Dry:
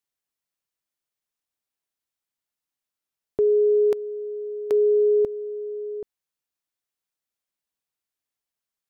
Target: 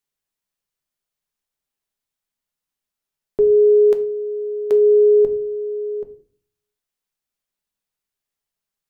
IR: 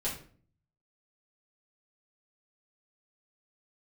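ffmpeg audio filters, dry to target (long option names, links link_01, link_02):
-filter_complex "[0:a]asplit=2[link_01][link_02];[1:a]atrim=start_sample=2205,lowshelf=frequency=180:gain=6.5[link_03];[link_02][link_03]afir=irnorm=-1:irlink=0,volume=-9.5dB[link_04];[link_01][link_04]amix=inputs=2:normalize=0"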